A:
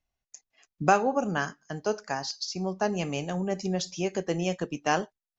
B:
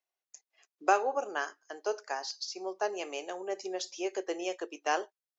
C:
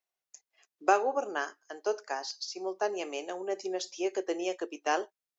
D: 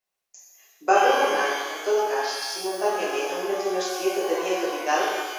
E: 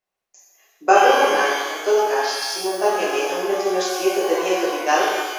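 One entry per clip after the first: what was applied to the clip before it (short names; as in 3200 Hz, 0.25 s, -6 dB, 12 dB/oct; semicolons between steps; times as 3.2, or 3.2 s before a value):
elliptic high-pass 350 Hz, stop band 80 dB; gain -3.5 dB
dynamic EQ 220 Hz, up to +6 dB, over -48 dBFS, Q 0.83
shimmer reverb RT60 1.3 s, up +12 st, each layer -8 dB, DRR -7 dB
mismatched tape noise reduction decoder only; gain +5 dB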